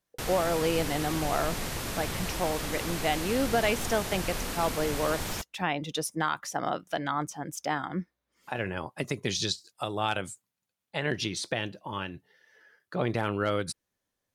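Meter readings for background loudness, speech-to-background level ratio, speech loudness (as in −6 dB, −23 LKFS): −34.0 LKFS, 2.5 dB, −31.5 LKFS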